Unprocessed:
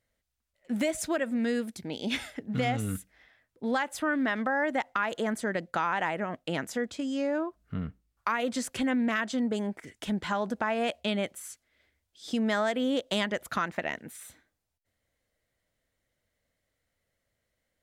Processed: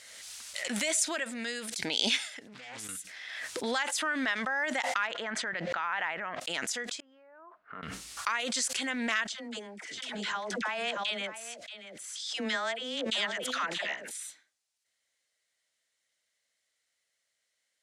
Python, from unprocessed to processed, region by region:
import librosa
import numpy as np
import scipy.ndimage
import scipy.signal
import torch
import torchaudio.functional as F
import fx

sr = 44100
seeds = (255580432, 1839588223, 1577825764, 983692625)

y = fx.chain(x, sr, fx.level_steps(step_db=23),
    fx.doppler_dist(depth_ms=0.47), at=(2.47, 2.89))
y = fx.chain(y, sr, fx.lowpass(hz=2100.0, slope=12),
    fx.peak_eq(hz=380.0, db=-5.5, octaves=2.1),
    fx.env_flatten(amount_pct=70), at=(5.07, 6.4))
y = fx.chain(y, sr, fx.lowpass(hz=1200.0, slope=24),
    fx.differentiator(), at=(7.0, 7.83))
y = fx.chain(y, sr, fx.lowpass(hz=3300.0, slope=6),
    fx.dispersion(late='lows', ms=75.0, hz=730.0),
    fx.echo_single(ms=630, db=-12.5), at=(9.27, 14.11))
y = fx.weighting(y, sr, curve='ITU-R 468')
y = fx.pre_swell(y, sr, db_per_s=28.0)
y = y * 10.0 ** (-4.5 / 20.0)